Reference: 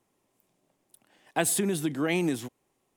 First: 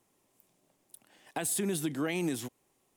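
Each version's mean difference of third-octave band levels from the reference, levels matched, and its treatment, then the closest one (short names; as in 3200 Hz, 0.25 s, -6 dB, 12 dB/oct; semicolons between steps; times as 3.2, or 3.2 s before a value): 3.0 dB: high shelf 4300 Hz +5.5 dB; in parallel at +2 dB: compressor, threshold -34 dBFS, peak gain reduction 14 dB; on the sum: limiter -15 dBFS, peak gain reduction 7.5 dB; gain -7 dB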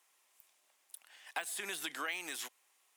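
11.5 dB: de-esser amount 90%; HPF 1400 Hz 12 dB/oct; compressor 8:1, threshold -43 dBFS, peak gain reduction 13 dB; gain +7.5 dB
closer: first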